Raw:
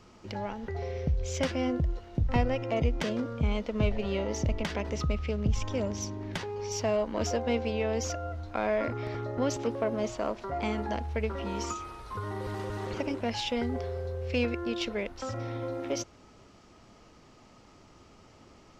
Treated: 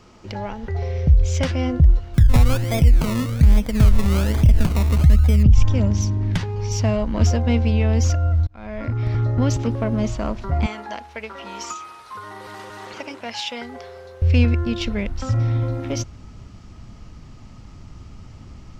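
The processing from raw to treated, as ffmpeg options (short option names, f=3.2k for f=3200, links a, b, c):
-filter_complex "[0:a]asettb=1/sr,asplit=3[a][b][c];[a]atrim=end=2.144[d];[b]atrim=start=2.14:end=5.43,asetpts=PTS-STARTPTS,afade=t=in:d=0.004:c=qsin,afade=t=out:st=3.286:d=0.004:c=qsin,acrusher=samples=22:mix=1:aa=0.000001:lfo=1:lforange=13.2:lforate=1.2[e];[c]atrim=start=5.426[f];[d][e]acrossfade=d=0.004:c1=hsin:c2=qsin[g];[g][f]acrossfade=d=0.004:c1=qsin:c2=hsin,asettb=1/sr,asplit=3[h][i][j];[h]atrim=end=10.664[k];[i]atrim=start=10.66:end=14.22,asetpts=PTS-STARTPTS,afade=t=in:d=0.004:c=qsin,afade=t=out:st=3.556:d=0.004:c=qsin,highpass=580[l];[j]atrim=start=14.216[m];[k][l]acrossfade=d=0.004:c1=hsin:c2=qsin[n];[n][m]acrossfade=d=0.004:c1=qsin:c2=hsin,asplit=2[o][p];[o]atrim=end=8.47,asetpts=PTS-STARTPTS,afade=t=out:st=8.466:d=0.004:c=hsin[q];[p]atrim=start=8.47,asetpts=PTS-STARTPTS,afade=t=in:d=0.75[r];[q][r]concat=n=2:v=0:a=1,asubboost=boost=7:cutoff=160,alimiter=level_in=10.5dB:limit=-1dB:release=50:level=0:latency=1,volume=-4.5dB"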